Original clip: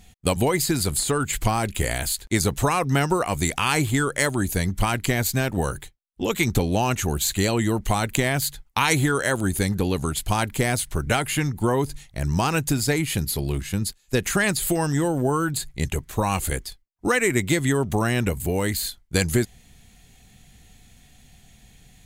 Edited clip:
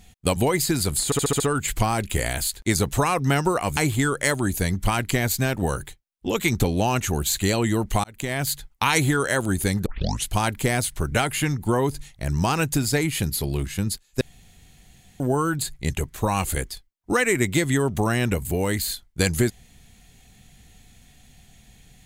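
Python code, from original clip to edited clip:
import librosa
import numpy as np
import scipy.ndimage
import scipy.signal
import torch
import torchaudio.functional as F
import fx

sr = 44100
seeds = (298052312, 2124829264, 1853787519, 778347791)

y = fx.edit(x, sr, fx.stutter(start_s=1.05, slice_s=0.07, count=6),
    fx.cut(start_s=3.42, length_s=0.3),
    fx.fade_in_span(start_s=7.99, length_s=0.47),
    fx.tape_start(start_s=9.81, length_s=0.4),
    fx.room_tone_fill(start_s=14.16, length_s=0.99), tone=tone)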